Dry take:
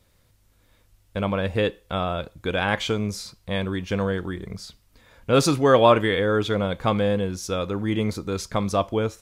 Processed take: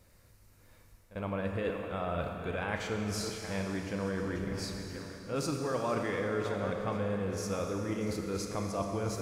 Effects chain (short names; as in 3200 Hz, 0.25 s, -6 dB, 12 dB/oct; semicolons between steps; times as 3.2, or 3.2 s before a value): regenerating reverse delay 0.516 s, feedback 42%, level -13.5 dB; bell 3400 Hz -10 dB 0.34 oct; reverse; compressor 4:1, threshold -34 dBFS, peak gain reduction 19 dB; reverse; pre-echo 47 ms -16 dB; Schroeder reverb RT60 3.1 s, combs from 27 ms, DRR 3 dB